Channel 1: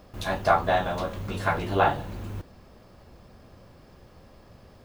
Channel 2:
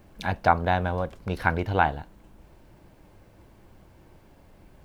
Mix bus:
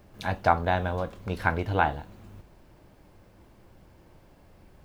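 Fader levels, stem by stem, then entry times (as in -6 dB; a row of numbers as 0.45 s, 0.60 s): -12.5 dB, -2.0 dB; 0.00 s, 0.00 s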